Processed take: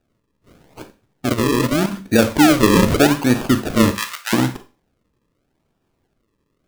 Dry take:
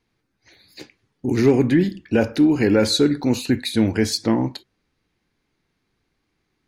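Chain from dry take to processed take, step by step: decimation with a swept rate 41×, swing 100% 0.82 Hz; 3.91–4.33 s: high-pass 1.2 kHz 24 dB/octave; Schroeder reverb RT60 0.32 s, combs from 32 ms, DRR 10 dB; 1.29–1.93 s: level held to a coarse grid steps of 10 dB; trim +3.5 dB

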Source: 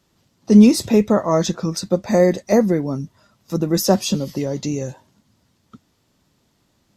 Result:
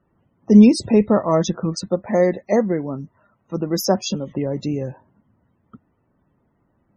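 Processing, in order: local Wiener filter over 9 samples; 1.88–4.31 s: bass shelf 320 Hz -6 dB; loudest bins only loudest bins 64

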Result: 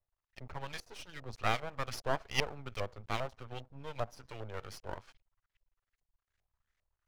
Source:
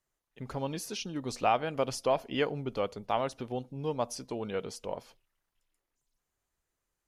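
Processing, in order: FFT filter 110 Hz 0 dB, 210 Hz -30 dB, 380 Hz -16 dB, 980 Hz -11 dB, 5.8 kHz +13 dB; LFO low-pass saw up 2.5 Hz 630–2200 Hz; half-wave rectifier; trim +6.5 dB

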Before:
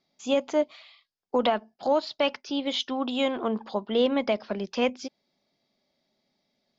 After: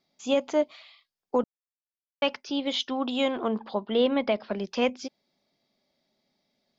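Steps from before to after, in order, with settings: 1.44–2.22 s: mute; 3.59–4.53 s: low-pass 4.7 kHz 24 dB/octave

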